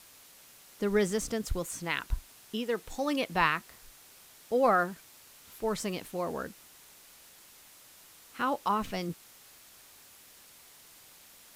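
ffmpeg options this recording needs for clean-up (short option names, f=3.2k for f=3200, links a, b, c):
-af "afwtdn=0.002"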